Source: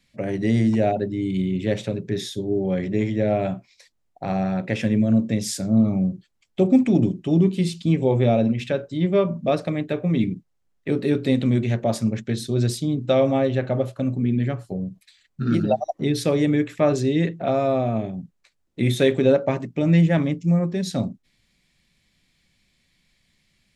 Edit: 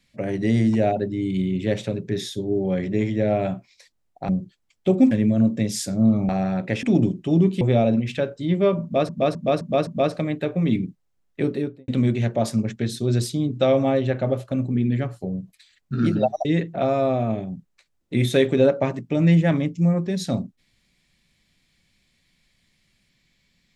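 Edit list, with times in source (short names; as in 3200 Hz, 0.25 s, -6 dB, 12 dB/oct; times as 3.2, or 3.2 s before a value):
4.29–4.83 swap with 6.01–6.83
7.61–8.13 cut
9.35–9.61 loop, 5 plays
10.89–11.36 studio fade out
15.93–17.11 cut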